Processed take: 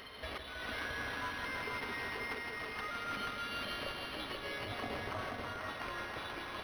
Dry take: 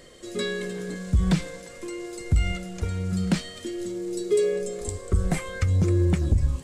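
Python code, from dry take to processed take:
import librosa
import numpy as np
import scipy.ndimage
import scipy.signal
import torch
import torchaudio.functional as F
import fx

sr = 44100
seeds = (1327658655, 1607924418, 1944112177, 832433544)

y = fx.pitch_trill(x, sr, semitones=-2.0, every_ms=363)
y = scipy.signal.sosfilt(scipy.signal.butter(4, 960.0, 'highpass', fs=sr, output='sos'), y)
y = y + 0.32 * np.pad(y, (int(5.8 * sr / 1000.0), 0))[:len(y)]
y = fx.over_compress(y, sr, threshold_db=-45.0, ratio=-1.0)
y = fx.notch(y, sr, hz=1800.0, q=12.0)
y = fx.echo_heads(y, sr, ms=161, heads='all three', feedback_pct=47, wet_db=-7)
y = np.interp(np.arange(len(y)), np.arange(len(y))[::6], y[::6])
y = y * 10.0 ** (2.5 / 20.0)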